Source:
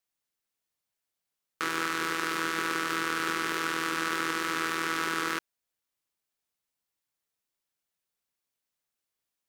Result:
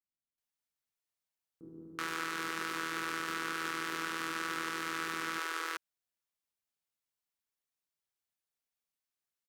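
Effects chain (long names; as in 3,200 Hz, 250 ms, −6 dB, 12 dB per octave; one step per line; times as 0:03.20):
multiband delay without the direct sound lows, highs 380 ms, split 350 Hz
level −6.5 dB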